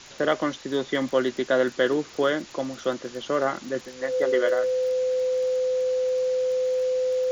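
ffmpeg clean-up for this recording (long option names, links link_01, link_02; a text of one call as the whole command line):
ffmpeg -i in.wav -af "adeclick=threshold=4,bandreject=frequency=510:width=30,afwtdn=0.0079" out.wav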